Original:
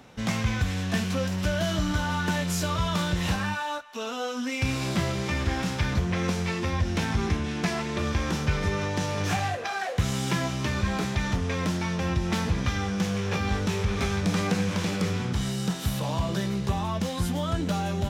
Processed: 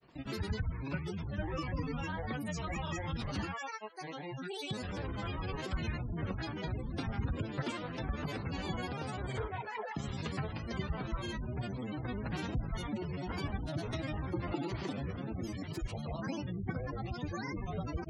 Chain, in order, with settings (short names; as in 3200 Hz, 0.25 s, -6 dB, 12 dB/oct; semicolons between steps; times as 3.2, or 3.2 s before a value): grains 0.1 s, pitch spread up and down by 12 st; spectral gate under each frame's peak -25 dB strong; gain -9 dB